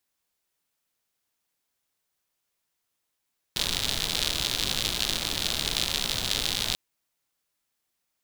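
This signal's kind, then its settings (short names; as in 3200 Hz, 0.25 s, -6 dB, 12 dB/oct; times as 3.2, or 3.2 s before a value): rain from filtered ticks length 3.19 s, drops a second 110, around 3700 Hz, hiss -5 dB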